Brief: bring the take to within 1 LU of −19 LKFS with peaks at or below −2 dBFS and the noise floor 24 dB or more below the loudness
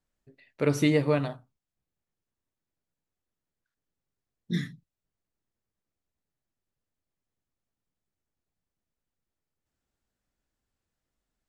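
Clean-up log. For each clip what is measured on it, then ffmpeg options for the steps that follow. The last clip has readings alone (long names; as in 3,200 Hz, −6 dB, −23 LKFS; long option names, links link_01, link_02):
integrated loudness −27.5 LKFS; sample peak −11.0 dBFS; target loudness −19.0 LKFS
→ -af "volume=8.5dB"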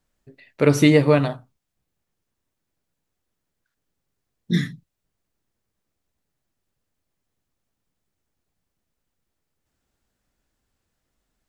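integrated loudness −19.0 LKFS; sample peak −2.5 dBFS; background noise floor −80 dBFS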